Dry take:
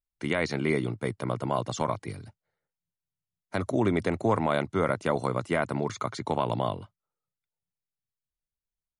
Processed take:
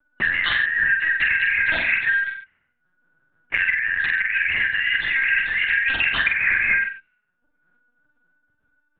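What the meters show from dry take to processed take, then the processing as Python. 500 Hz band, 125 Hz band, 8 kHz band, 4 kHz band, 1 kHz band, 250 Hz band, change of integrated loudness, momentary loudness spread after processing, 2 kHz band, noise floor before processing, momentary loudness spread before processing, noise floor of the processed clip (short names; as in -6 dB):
under -15 dB, under -10 dB, under -25 dB, +13.5 dB, -6.5 dB, under -15 dB, +10.0 dB, 4 LU, +21.0 dB, under -85 dBFS, 8 LU, -71 dBFS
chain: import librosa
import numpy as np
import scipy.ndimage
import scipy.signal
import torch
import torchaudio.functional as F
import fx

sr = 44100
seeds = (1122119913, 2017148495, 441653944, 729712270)

p1 = fx.band_shuffle(x, sr, order='3142')
p2 = fx.low_shelf(p1, sr, hz=110.0, db=10.0)
p3 = fx.over_compress(p2, sr, threshold_db=-33.0, ratio=-1.0)
p4 = fx.high_shelf(p3, sr, hz=2500.0, db=11.0)
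p5 = fx.hum_notches(p4, sr, base_hz=60, count=8)
p6 = fx.lpc_vocoder(p5, sr, seeds[0], excitation='pitch_kept', order=8)
p7 = fx.doubler(p6, sr, ms=45.0, db=-4.0)
p8 = fx.env_lowpass(p7, sr, base_hz=630.0, full_db=-26.5)
p9 = p8 + fx.echo_single(p8, sr, ms=92, db=-11.0, dry=0)
p10 = fx.band_squash(p9, sr, depth_pct=70)
y = F.gain(torch.from_numpy(p10), 6.5).numpy()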